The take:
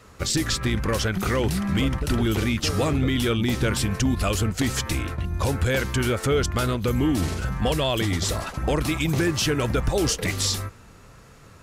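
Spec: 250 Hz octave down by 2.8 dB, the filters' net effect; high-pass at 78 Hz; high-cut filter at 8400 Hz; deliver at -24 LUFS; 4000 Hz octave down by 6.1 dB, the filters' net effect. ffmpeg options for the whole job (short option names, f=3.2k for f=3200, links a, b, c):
-af "highpass=78,lowpass=8.4k,equalizer=f=250:t=o:g=-3.5,equalizer=f=4k:t=o:g=-8,volume=2.5dB"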